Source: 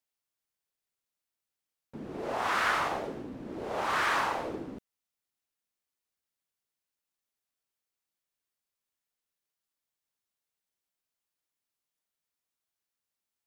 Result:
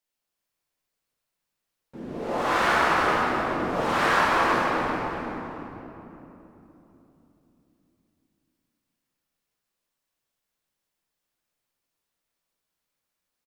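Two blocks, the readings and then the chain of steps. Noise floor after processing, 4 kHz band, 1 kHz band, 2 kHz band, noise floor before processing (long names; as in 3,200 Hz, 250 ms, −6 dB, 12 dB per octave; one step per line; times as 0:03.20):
−84 dBFS, +6.5 dB, +8.5 dB, +8.0 dB, below −85 dBFS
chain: echo with shifted repeats 350 ms, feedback 34%, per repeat −32 Hz, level −5 dB
rectangular room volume 180 cubic metres, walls hard, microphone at 0.9 metres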